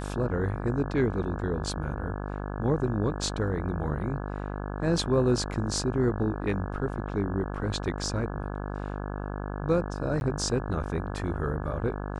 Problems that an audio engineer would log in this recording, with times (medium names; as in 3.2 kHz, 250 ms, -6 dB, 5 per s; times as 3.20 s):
buzz 50 Hz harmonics 34 -34 dBFS
10.20–10.21 s: dropout 11 ms